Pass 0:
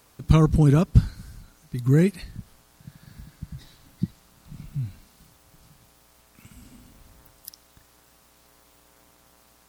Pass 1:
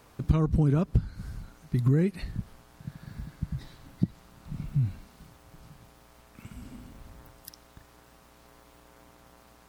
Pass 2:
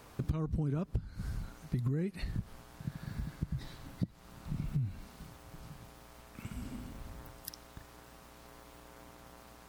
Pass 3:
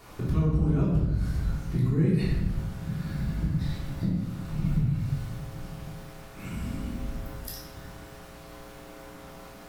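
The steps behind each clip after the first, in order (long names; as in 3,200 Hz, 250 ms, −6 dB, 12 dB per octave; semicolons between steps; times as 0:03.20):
downward compressor 12 to 1, threshold −24 dBFS, peak gain reduction 16 dB; high-shelf EQ 3,200 Hz −10.5 dB; level +4.5 dB
downward compressor 5 to 1, threshold −33 dBFS, peak gain reduction 15 dB; level +1.5 dB
convolution reverb RT60 1.1 s, pre-delay 3 ms, DRR −7.5 dB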